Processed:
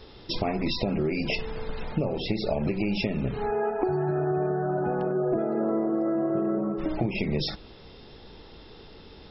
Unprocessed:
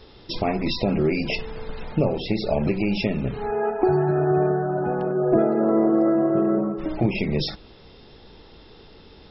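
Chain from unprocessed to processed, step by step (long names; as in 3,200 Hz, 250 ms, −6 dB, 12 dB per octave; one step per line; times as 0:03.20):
downward compressor, threshold −23 dBFS, peak gain reduction 9.5 dB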